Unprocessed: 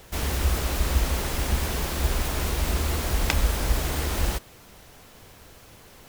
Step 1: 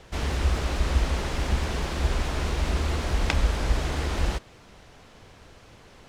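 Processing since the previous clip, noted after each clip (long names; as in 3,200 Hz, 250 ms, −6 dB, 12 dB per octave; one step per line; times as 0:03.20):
high-frequency loss of the air 79 metres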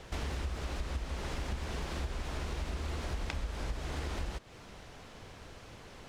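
downward compressor 6 to 1, threshold −34 dBFS, peak gain reduction 17 dB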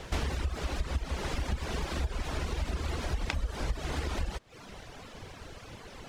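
reverb reduction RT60 1 s
level +6.5 dB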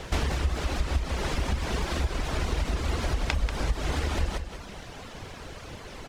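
repeating echo 188 ms, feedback 31%, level −8.5 dB
level +4.5 dB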